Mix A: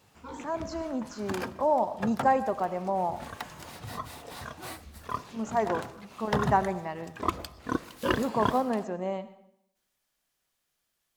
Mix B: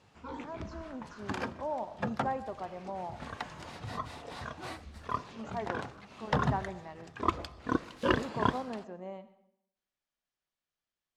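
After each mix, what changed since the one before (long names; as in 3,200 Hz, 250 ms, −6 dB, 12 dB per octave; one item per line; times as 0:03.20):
speech −10.5 dB
master: add high-frequency loss of the air 81 metres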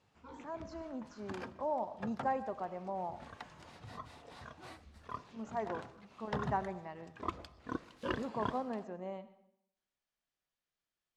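background −9.5 dB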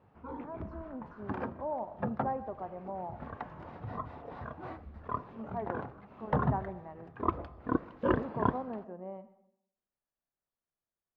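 background +10.0 dB
master: add low-pass filter 1,200 Hz 12 dB per octave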